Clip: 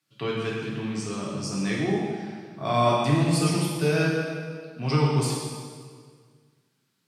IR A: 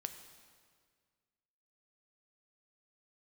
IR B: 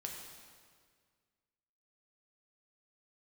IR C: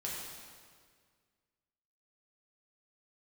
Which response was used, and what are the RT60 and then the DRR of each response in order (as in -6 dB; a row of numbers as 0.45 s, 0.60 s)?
C; 1.8 s, 1.8 s, 1.8 s; 7.0 dB, 0.0 dB, -5.5 dB